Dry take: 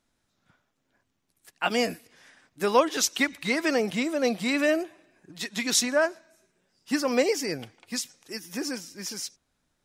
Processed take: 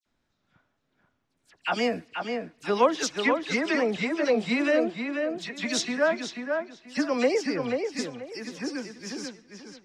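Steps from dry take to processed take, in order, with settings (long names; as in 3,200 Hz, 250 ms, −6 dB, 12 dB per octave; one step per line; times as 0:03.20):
high-frequency loss of the air 100 metres
all-pass dispersion lows, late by 62 ms, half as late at 2,700 Hz
tape delay 485 ms, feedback 28%, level −4 dB, low-pass 3,000 Hz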